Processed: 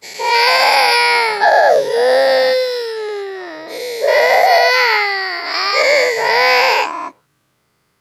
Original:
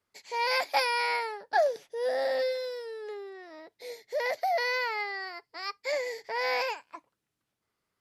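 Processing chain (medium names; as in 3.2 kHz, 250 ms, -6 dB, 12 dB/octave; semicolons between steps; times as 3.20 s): every event in the spectrogram widened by 240 ms; peaking EQ 140 Hz +7.5 dB 0.43 oct; loudness maximiser +14.5 dB; trim -1 dB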